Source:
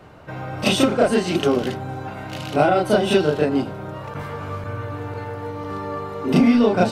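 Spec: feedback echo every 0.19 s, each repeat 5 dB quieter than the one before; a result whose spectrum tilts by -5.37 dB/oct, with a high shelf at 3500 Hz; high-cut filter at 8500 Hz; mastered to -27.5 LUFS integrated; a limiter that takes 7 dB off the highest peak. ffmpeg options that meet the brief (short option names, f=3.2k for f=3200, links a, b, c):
-af "lowpass=8.5k,highshelf=f=3.5k:g=-8.5,alimiter=limit=-11dB:level=0:latency=1,aecho=1:1:190|380|570|760|950|1140|1330:0.562|0.315|0.176|0.0988|0.0553|0.031|0.0173,volume=-5dB"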